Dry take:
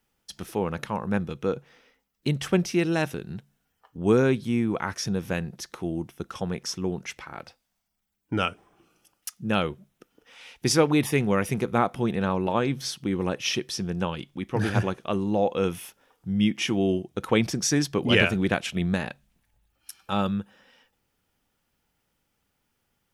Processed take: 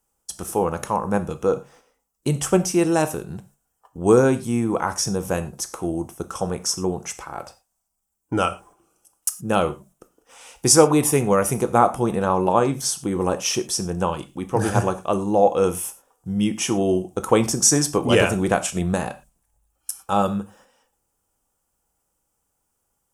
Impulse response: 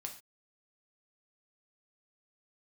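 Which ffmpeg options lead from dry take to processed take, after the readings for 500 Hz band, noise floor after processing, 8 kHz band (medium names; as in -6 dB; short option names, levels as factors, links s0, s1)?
+6.5 dB, -74 dBFS, +12.0 dB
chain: -filter_complex "[0:a]agate=range=0.447:threshold=0.00178:ratio=16:detection=peak,equalizer=f=125:t=o:w=1:g=-6,equalizer=f=250:t=o:w=1:g=-5,equalizer=f=1000:t=o:w=1:g=3,equalizer=f=2000:t=o:w=1:g=-10,equalizer=f=4000:t=o:w=1:g=-11,equalizer=f=8000:t=o:w=1:g=11,asplit=2[s0][s1];[1:a]atrim=start_sample=2205,afade=t=out:st=0.17:d=0.01,atrim=end_sample=7938[s2];[s1][s2]afir=irnorm=-1:irlink=0,volume=1.41[s3];[s0][s3]amix=inputs=2:normalize=0,volume=1.33"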